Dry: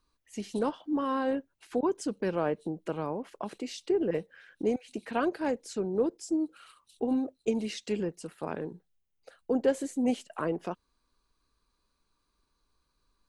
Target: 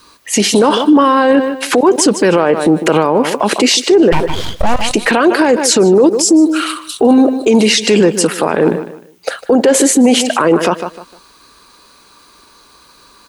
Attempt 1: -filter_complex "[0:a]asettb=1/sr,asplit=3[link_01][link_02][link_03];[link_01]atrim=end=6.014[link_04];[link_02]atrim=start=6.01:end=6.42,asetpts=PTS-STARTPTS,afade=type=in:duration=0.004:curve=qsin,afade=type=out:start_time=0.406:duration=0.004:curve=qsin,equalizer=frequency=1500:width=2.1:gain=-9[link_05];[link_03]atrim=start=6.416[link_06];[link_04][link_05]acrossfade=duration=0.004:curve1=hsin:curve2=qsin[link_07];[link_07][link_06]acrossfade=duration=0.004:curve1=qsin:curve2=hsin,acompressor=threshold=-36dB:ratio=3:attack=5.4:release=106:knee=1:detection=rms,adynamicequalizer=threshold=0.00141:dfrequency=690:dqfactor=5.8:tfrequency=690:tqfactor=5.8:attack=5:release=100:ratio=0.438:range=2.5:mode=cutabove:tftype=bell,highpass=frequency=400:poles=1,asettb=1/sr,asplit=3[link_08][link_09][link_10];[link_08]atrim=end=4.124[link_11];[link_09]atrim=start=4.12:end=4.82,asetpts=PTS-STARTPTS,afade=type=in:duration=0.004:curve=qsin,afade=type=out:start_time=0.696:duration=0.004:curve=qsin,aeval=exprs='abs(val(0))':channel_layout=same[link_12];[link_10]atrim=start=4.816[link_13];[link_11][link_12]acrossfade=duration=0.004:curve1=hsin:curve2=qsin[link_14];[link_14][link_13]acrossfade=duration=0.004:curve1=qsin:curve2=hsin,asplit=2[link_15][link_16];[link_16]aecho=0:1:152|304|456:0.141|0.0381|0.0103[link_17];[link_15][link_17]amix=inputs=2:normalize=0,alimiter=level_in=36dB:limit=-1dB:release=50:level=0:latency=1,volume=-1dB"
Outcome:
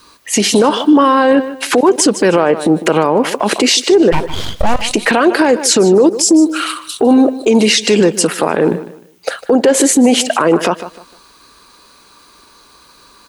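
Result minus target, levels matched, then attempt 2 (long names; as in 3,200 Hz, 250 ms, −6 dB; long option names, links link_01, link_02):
downward compressor: peak gain reduction +6.5 dB
-filter_complex "[0:a]asettb=1/sr,asplit=3[link_01][link_02][link_03];[link_01]atrim=end=6.014[link_04];[link_02]atrim=start=6.01:end=6.42,asetpts=PTS-STARTPTS,afade=type=in:duration=0.004:curve=qsin,afade=type=out:start_time=0.406:duration=0.004:curve=qsin,equalizer=frequency=1500:width=2.1:gain=-9[link_05];[link_03]atrim=start=6.416[link_06];[link_04][link_05]acrossfade=duration=0.004:curve1=hsin:curve2=qsin[link_07];[link_07][link_06]acrossfade=duration=0.004:curve1=qsin:curve2=hsin,acompressor=threshold=-26.5dB:ratio=3:attack=5.4:release=106:knee=1:detection=rms,adynamicequalizer=threshold=0.00141:dfrequency=690:dqfactor=5.8:tfrequency=690:tqfactor=5.8:attack=5:release=100:ratio=0.438:range=2.5:mode=cutabove:tftype=bell,highpass=frequency=400:poles=1,asettb=1/sr,asplit=3[link_08][link_09][link_10];[link_08]atrim=end=4.124[link_11];[link_09]atrim=start=4.12:end=4.82,asetpts=PTS-STARTPTS,afade=type=in:duration=0.004:curve=qsin,afade=type=out:start_time=0.696:duration=0.004:curve=qsin,aeval=exprs='abs(val(0))':channel_layout=same[link_12];[link_10]atrim=start=4.816[link_13];[link_11][link_12]acrossfade=duration=0.004:curve1=hsin:curve2=qsin[link_14];[link_14][link_13]acrossfade=duration=0.004:curve1=qsin:curve2=hsin,asplit=2[link_15][link_16];[link_16]aecho=0:1:152|304|456:0.141|0.0381|0.0103[link_17];[link_15][link_17]amix=inputs=2:normalize=0,alimiter=level_in=36dB:limit=-1dB:release=50:level=0:latency=1,volume=-1dB"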